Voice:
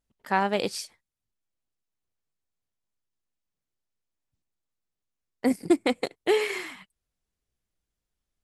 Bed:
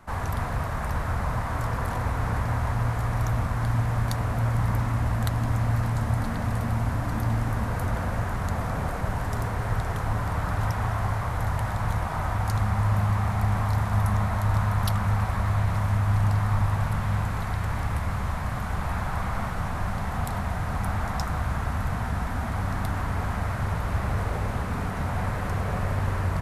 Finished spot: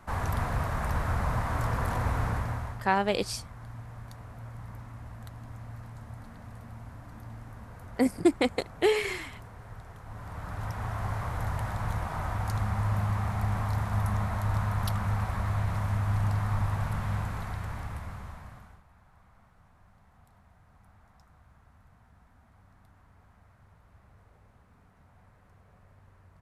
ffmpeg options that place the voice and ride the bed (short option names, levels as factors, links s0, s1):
-filter_complex "[0:a]adelay=2550,volume=0.891[s0];[1:a]volume=3.98,afade=t=out:st=2.17:d=0.68:silence=0.141254,afade=t=in:st=10.04:d=1.17:silence=0.211349,afade=t=out:st=17.12:d=1.71:silence=0.0473151[s1];[s0][s1]amix=inputs=2:normalize=0"